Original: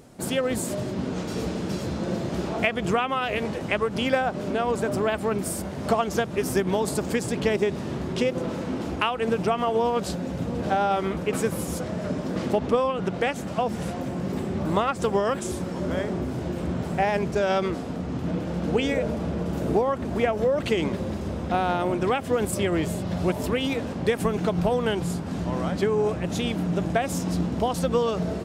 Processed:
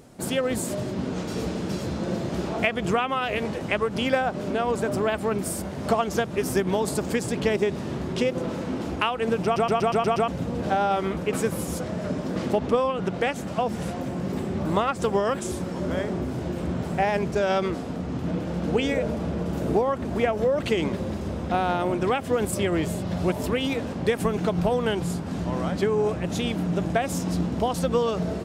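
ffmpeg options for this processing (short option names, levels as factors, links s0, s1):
-filter_complex "[0:a]asplit=8[s0][s1][s2][s3][s4][s5][s6][s7];[s0]atrim=end=9.562[s8];[s1]atrim=start=9.438:end=9.562[s9];[s2]atrim=start=9.438:end=9.562[s10];[s3]atrim=start=9.438:end=9.562[s11];[s4]atrim=start=9.438:end=9.562[s12];[s5]atrim=start=9.438:end=9.562[s13];[s6]atrim=start=9.438:end=9.562[s14];[s7]atrim=start=10.278[s15];[s8][s9]acrossfade=d=0.004:c1=hsin:c2=hsin[s16];[s16][s10]acrossfade=d=0.004:c1=hsin:c2=hsin[s17];[s17][s11]acrossfade=d=0.004:c1=hsin:c2=hsin[s18];[s18][s12]acrossfade=d=0.004:c1=hsin:c2=hsin[s19];[s19][s13]acrossfade=d=0.004:c1=hsin:c2=hsin[s20];[s20][s14]acrossfade=d=0.004:c1=hsin:c2=hsin[s21];[s21][s15]acrossfade=d=0.004:c1=hsin:c2=hsin"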